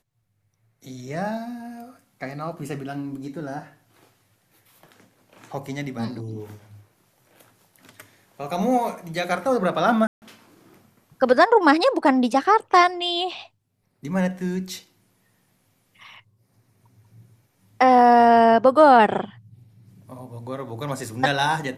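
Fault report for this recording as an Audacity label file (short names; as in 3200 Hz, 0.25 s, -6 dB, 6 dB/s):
10.070000	10.220000	gap 0.149 s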